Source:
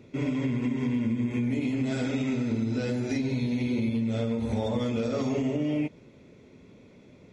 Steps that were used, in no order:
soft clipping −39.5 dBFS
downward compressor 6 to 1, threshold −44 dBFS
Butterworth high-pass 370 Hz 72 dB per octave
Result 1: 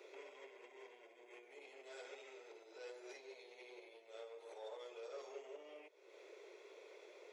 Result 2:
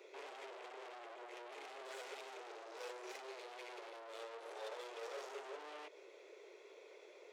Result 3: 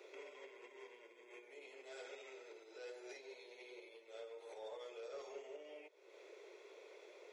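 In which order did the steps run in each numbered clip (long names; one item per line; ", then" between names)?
downward compressor, then soft clipping, then Butterworth high-pass
soft clipping, then downward compressor, then Butterworth high-pass
downward compressor, then Butterworth high-pass, then soft clipping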